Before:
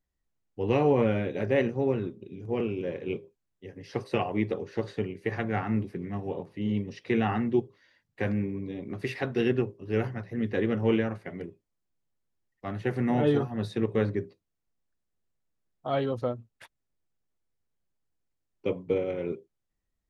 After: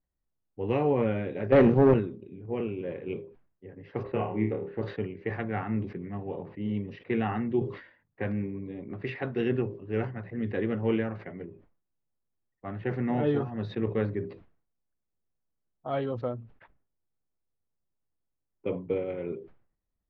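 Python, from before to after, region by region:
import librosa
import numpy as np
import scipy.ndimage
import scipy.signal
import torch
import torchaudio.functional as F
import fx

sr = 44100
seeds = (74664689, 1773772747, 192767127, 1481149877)

y = fx.chain(x, sr, fx.highpass(hz=170.0, slope=6),
    fx.low_shelf(hz=410.0, db=11.0),
    fx.leveller(passes=2), at=(1.52, 1.94))
y = fx.chain(y, sr, fx.air_absorb(metres=440.0),
    fx.room_flutter(wall_m=4.7, rt60_s=0.34), at=(4.03, 4.82))
y = scipy.signal.sosfilt(scipy.signal.butter(2, 2900.0, 'lowpass', fs=sr, output='sos'), y)
y = fx.env_lowpass(y, sr, base_hz=1400.0, full_db=-21.5)
y = fx.sustainer(y, sr, db_per_s=110.0)
y = y * 10.0 ** (-2.5 / 20.0)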